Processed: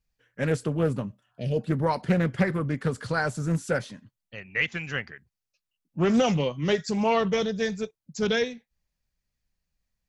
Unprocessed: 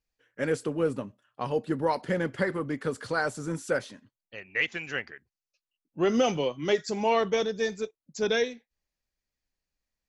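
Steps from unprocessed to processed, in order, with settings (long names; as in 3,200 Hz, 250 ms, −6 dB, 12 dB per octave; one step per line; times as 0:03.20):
healed spectral selection 0:01.22–0:01.58, 700–1,700 Hz both
low shelf with overshoot 230 Hz +7 dB, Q 1.5
highs frequency-modulated by the lows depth 0.29 ms
level +1.5 dB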